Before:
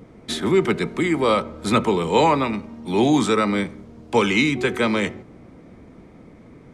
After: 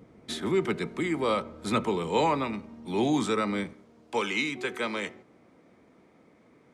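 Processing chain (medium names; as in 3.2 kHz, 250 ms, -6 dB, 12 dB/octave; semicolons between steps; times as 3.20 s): high-pass 61 Hz 6 dB/octave, from 3.73 s 450 Hz; trim -8 dB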